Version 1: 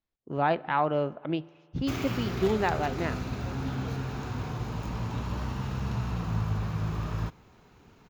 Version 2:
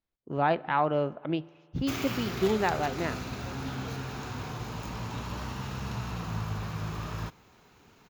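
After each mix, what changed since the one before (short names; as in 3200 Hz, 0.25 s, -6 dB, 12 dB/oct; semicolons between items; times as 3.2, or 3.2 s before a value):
background: add tilt +1.5 dB/oct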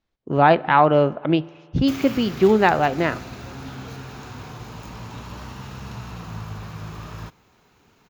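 speech +11.0 dB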